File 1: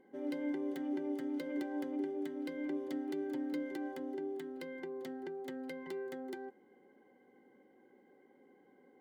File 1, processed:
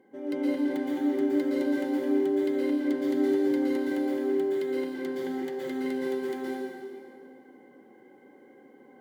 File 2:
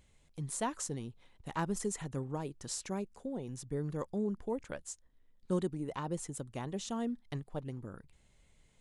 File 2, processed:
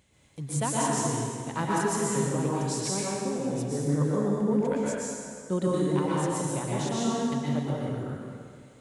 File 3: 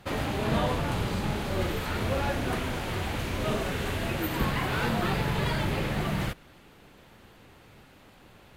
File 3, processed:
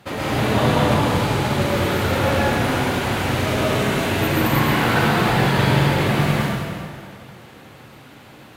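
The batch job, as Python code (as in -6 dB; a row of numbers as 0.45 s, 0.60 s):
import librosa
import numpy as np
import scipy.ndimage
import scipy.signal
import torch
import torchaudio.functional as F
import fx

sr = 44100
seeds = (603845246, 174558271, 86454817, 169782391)

y = scipy.signal.sosfilt(scipy.signal.butter(2, 93.0, 'highpass', fs=sr, output='sos'), x)
y = fx.rev_plate(y, sr, seeds[0], rt60_s=2.2, hf_ratio=0.8, predelay_ms=105, drr_db=-6.5)
y = y * 10.0 ** (3.5 / 20.0)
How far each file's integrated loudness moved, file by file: +12.0 LU, +10.5 LU, +10.5 LU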